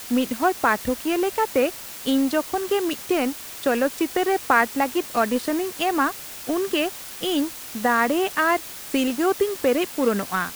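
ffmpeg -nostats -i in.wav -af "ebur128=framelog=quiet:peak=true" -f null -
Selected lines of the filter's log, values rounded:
Integrated loudness:
  I:         -23.0 LUFS
  Threshold: -33.0 LUFS
Loudness range:
  LRA:         1.2 LU
  Threshold: -43.2 LUFS
  LRA low:   -23.8 LUFS
  LRA high:  -22.6 LUFS
True peak:
  Peak:       -4.1 dBFS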